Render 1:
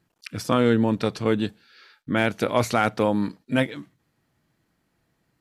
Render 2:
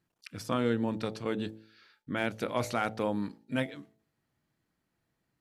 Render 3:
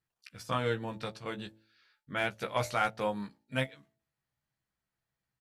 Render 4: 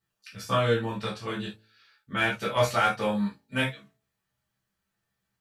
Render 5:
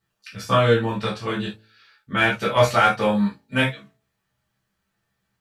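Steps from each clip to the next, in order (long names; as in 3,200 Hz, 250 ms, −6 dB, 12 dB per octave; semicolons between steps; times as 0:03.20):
hum removal 54.79 Hz, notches 16; level −9 dB
parametric band 290 Hz −10.5 dB 1.4 octaves; double-tracking delay 15 ms −6 dB; expander for the loud parts 1.5 to 1, over −49 dBFS; level +3 dB
reverb whose tail is shaped and stops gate 100 ms falling, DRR −5.5 dB
high-shelf EQ 5,600 Hz −5.5 dB; level +7 dB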